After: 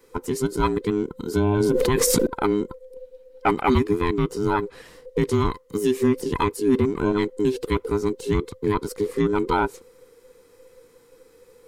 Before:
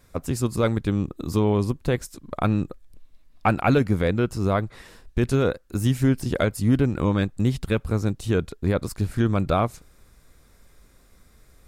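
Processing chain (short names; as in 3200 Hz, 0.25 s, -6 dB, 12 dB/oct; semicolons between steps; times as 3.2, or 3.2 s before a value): band inversion scrambler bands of 500 Hz; 1.6–2.27 fast leveller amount 100%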